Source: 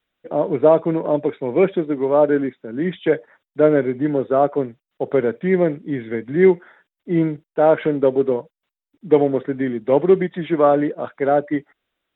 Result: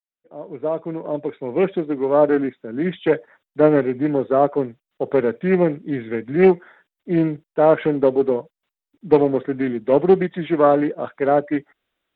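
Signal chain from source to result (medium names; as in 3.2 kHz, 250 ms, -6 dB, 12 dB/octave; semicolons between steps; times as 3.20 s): fade-in on the opening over 2.25 s; loudspeaker Doppler distortion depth 0.24 ms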